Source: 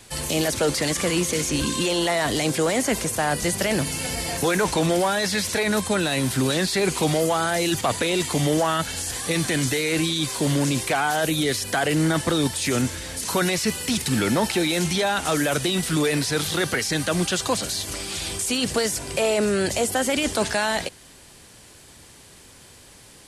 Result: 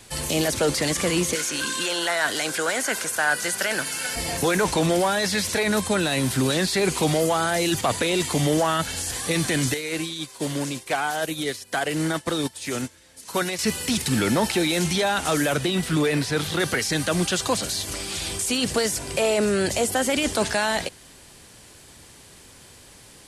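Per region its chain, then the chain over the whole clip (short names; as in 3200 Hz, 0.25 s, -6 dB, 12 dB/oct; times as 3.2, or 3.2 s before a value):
1.35–4.16 HPF 770 Hz 6 dB/oct + bell 1500 Hz +13.5 dB 0.25 oct
9.74–13.59 low shelf 150 Hz -8 dB + upward expander 2.5:1, over -33 dBFS
15.52–16.6 HPF 42 Hz + tone controls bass +1 dB, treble -6 dB
whole clip: dry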